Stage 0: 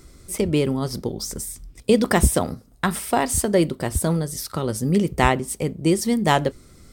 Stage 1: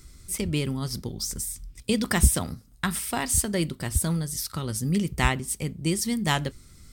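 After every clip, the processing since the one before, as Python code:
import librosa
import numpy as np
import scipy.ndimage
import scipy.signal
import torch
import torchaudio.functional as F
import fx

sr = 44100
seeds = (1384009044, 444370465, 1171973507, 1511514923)

y = fx.peak_eq(x, sr, hz=530.0, db=-12.5, octaves=2.3)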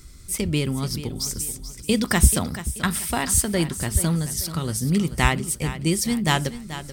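y = fx.echo_feedback(x, sr, ms=434, feedback_pct=37, wet_db=-13.0)
y = y * 10.0 ** (3.5 / 20.0)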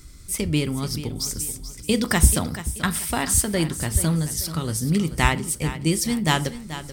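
y = fx.rev_fdn(x, sr, rt60_s=0.44, lf_ratio=1.0, hf_ratio=0.7, size_ms=20.0, drr_db=13.5)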